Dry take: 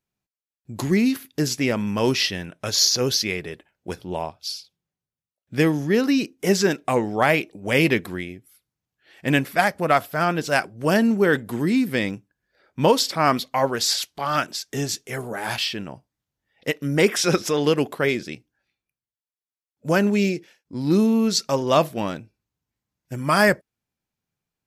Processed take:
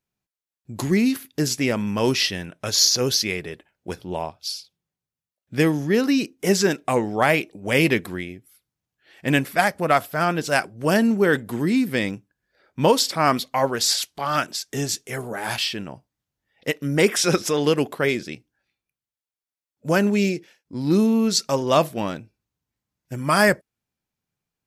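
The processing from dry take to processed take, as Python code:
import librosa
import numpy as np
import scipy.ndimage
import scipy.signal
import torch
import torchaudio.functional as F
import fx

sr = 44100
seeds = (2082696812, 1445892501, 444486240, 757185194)

y = fx.dynamic_eq(x, sr, hz=9200.0, q=1.2, threshold_db=-43.0, ratio=4.0, max_db=4)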